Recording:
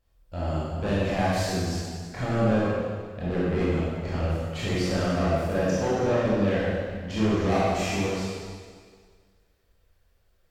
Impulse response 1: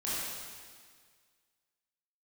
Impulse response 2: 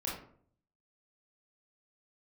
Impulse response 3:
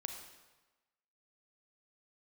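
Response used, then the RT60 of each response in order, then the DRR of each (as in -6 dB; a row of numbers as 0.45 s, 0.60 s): 1; 1.8 s, 0.55 s, 1.2 s; -9.5 dB, -5.0 dB, 4.5 dB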